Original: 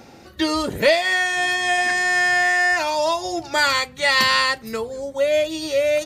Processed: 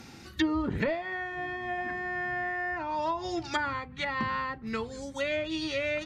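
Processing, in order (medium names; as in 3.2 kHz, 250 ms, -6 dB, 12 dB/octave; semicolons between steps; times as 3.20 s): peaking EQ 580 Hz -14 dB 1.1 oct; low-pass that closes with the level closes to 800 Hz, closed at -21.5 dBFS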